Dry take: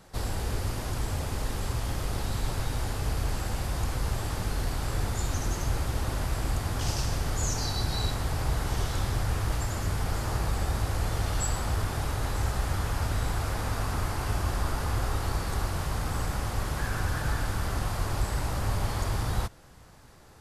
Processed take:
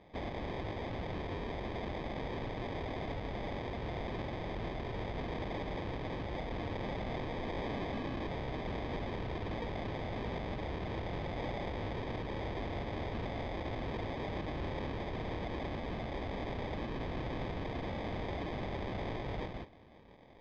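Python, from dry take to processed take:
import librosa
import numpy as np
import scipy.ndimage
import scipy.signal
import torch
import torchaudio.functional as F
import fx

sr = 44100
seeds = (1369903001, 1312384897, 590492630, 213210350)

p1 = fx.tilt_eq(x, sr, slope=2.5)
p2 = p1 + fx.echo_single(p1, sr, ms=172, db=-5.0, dry=0)
p3 = fx.sample_hold(p2, sr, seeds[0], rate_hz=1400.0, jitter_pct=0)
p4 = 10.0 ** (-27.5 / 20.0) * (np.abs((p3 / 10.0 ** (-27.5 / 20.0) + 3.0) % 4.0 - 2.0) - 1.0)
p5 = scipy.signal.sosfilt(scipy.signal.butter(4, 4000.0, 'lowpass', fs=sr, output='sos'), p4)
y = p5 * 10.0 ** (-5.0 / 20.0)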